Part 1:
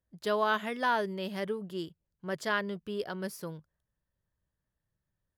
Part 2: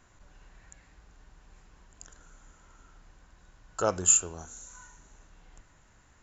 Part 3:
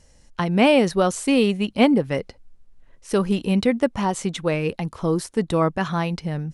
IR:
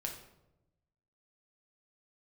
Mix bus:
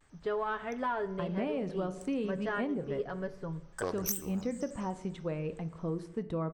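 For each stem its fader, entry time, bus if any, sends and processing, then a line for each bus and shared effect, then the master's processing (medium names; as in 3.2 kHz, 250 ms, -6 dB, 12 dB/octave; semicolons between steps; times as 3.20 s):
-3.0 dB, 0.00 s, send -7 dB, comb 7.1 ms, depth 60%; saturation -18.5 dBFS, distortion -21 dB; Bessel low-pass 1.5 kHz, order 2
-7.0 dB, 0.00 s, send -9 dB, self-modulated delay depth 0.099 ms; vibrato with a chosen wave square 5.1 Hz, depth 250 cents
-14.5 dB, 0.80 s, send -5 dB, low-pass 1.1 kHz 6 dB/octave; band-stop 840 Hz, Q 12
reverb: on, RT60 0.95 s, pre-delay 6 ms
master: compression 10:1, threshold -29 dBFS, peak gain reduction 9.5 dB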